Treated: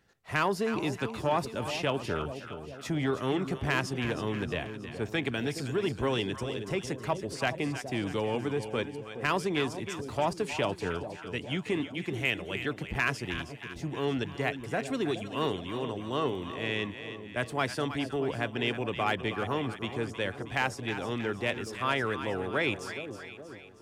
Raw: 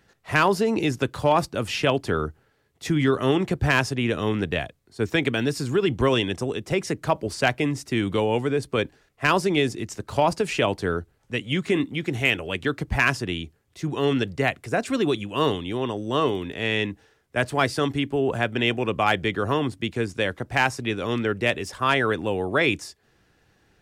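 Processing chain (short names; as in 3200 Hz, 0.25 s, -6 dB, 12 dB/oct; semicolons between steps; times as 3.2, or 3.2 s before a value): on a send: split-band echo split 790 Hz, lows 0.42 s, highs 0.317 s, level -10 dB; on the sum: core saturation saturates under 430 Hz; gain -7.5 dB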